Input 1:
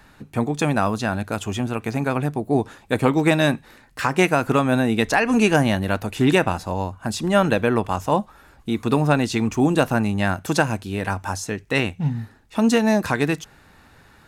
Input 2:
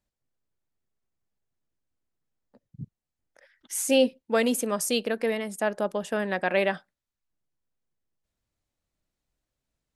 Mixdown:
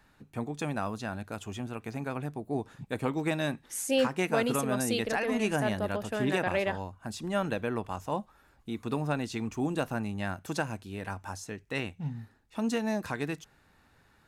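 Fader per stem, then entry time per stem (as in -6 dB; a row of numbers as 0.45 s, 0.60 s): -12.5 dB, -5.5 dB; 0.00 s, 0.00 s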